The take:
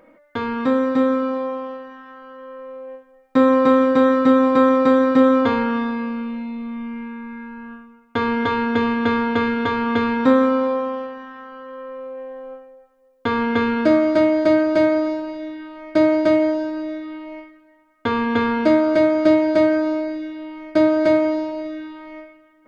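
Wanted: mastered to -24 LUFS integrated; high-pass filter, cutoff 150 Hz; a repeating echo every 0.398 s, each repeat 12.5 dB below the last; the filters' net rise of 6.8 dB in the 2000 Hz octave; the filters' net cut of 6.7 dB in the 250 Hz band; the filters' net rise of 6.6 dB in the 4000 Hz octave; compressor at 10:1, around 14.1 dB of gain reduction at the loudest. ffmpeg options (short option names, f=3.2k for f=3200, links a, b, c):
-af "highpass=150,equalizer=f=250:t=o:g=-7.5,equalizer=f=2k:t=o:g=7.5,equalizer=f=4k:t=o:g=5.5,acompressor=threshold=-27dB:ratio=10,aecho=1:1:398|796|1194:0.237|0.0569|0.0137,volume=7dB"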